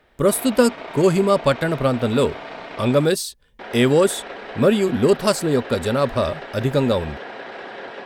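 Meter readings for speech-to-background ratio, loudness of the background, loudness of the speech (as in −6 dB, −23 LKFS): 15.5 dB, −35.0 LKFS, −19.5 LKFS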